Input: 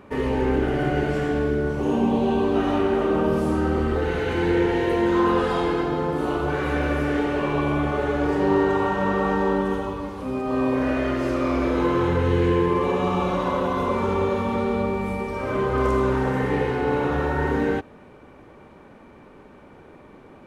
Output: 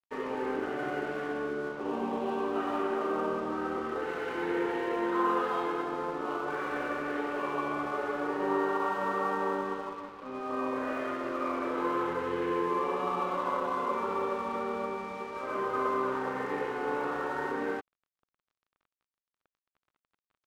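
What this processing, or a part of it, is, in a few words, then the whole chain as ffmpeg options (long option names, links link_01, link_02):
pocket radio on a weak battery: -af "highpass=300,lowpass=3100,aeval=exprs='sgn(val(0))*max(abs(val(0))-0.00891,0)':channel_layout=same,equalizer=frequency=1200:width_type=o:width=0.59:gain=7,volume=-8dB"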